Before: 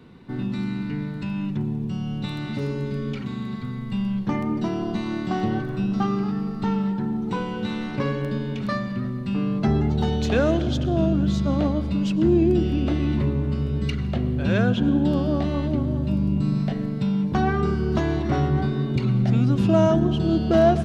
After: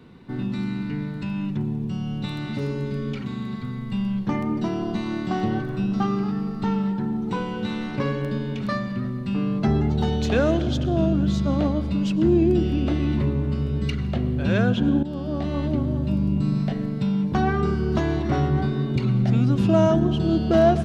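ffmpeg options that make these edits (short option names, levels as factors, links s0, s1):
-filter_complex "[0:a]asplit=2[s0][s1];[s0]atrim=end=15.03,asetpts=PTS-STARTPTS,afade=t=out:st=15.026:d=0.004:c=hsin:silence=0.223872[s2];[s1]atrim=start=15.03,asetpts=PTS-STARTPTS,afade=t=in:d=0.62:silence=0.223872[s3];[s2][s3]concat=n=2:v=0:a=1"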